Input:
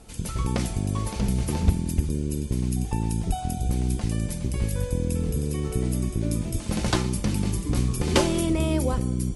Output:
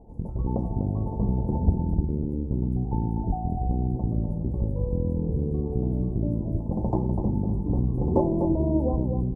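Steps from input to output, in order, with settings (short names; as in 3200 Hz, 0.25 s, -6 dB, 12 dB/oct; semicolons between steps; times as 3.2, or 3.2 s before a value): elliptic low-pass 900 Hz, stop band 40 dB; echo 0.248 s -7 dB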